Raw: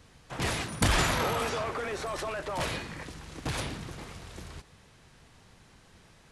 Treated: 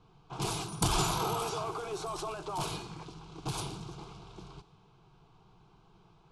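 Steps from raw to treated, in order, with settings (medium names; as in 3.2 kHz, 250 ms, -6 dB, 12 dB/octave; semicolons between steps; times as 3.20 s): static phaser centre 370 Hz, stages 8; level-controlled noise filter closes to 2.3 kHz, open at -32.5 dBFS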